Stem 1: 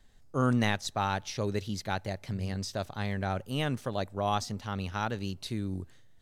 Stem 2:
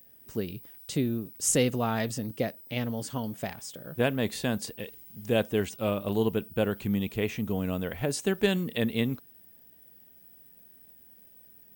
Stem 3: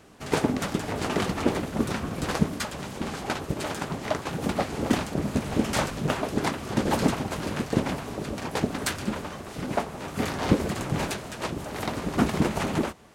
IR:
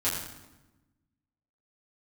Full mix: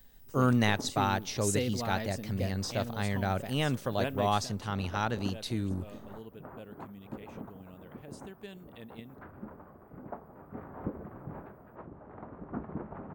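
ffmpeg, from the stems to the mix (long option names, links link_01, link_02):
-filter_complex "[0:a]volume=1dB[link_01];[1:a]volume=-8dB,afade=type=out:start_time=4.26:duration=0.21:silence=0.223872,asplit=2[link_02][link_03];[2:a]lowpass=frequency=1400:width=0.5412,lowpass=frequency=1400:width=1.3066,adelay=350,volume=-15dB[link_04];[link_03]apad=whole_len=595107[link_05];[link_04][link_05]sidechaincompress=threshold=-55dB:ratio=8:attack=16:release=159[link_06];[link_01][link_02][link_06]amix=inputs=3:normalize=0"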